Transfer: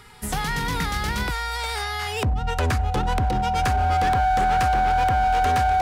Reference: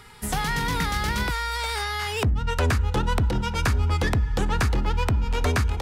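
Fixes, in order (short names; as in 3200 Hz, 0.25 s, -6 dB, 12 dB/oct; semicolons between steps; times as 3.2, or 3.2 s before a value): clip repair -17 dBFS; notch 750 Hz, Q 30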